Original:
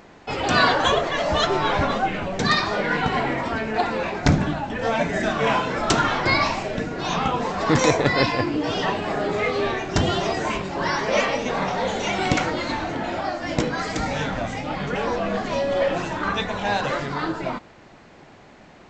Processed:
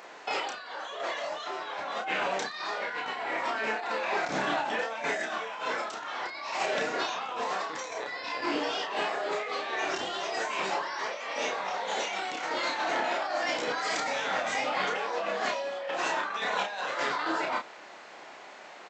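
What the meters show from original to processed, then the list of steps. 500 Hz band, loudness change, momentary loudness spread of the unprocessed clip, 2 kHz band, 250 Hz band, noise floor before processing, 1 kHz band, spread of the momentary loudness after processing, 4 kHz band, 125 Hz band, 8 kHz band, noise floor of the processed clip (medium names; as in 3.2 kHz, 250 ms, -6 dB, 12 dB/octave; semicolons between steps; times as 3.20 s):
-9.5 dB, -8.5 dB, 7 LU, -6.5 dB, -16.0 dB, -48 dBFS, -7.0 dB, 6 LU, -7.5 dB, -27.0 dB, -7.0 dB, -47 dBFS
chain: high-pass 600 Hz 12 dB/octave; compressor with a negative ratio -32 dBFS, ratio -1; doubling 31 ms -4 dB; trim -2.5 dB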